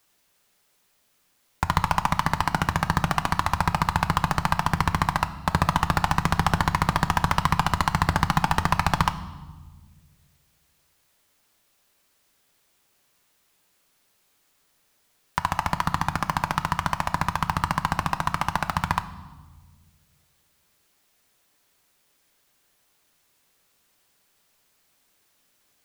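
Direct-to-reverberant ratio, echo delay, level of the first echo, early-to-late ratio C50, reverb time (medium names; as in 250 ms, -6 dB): 10.0 dB, no echo, no echo, 14.0 dB, 1.3 s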